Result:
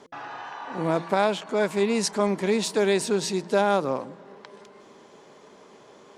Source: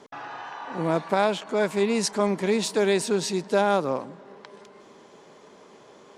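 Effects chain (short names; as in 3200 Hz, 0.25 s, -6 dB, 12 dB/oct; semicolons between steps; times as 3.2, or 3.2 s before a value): de-hum 170.9 Hz, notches 3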